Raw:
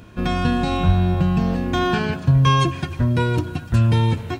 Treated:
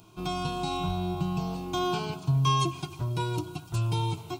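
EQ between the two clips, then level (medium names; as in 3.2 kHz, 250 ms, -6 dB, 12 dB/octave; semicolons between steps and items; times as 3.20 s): tilt EQ +1.5 dB/octave; static phaser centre 350 Hz, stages 8; -5.0 dB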